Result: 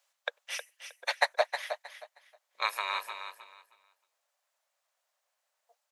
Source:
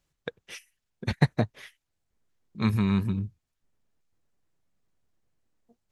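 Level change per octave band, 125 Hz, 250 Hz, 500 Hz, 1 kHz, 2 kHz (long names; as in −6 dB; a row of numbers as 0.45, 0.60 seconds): below −40 dB, below −40 dB, +1.5 dB, +6.0 dB, +5.5 dB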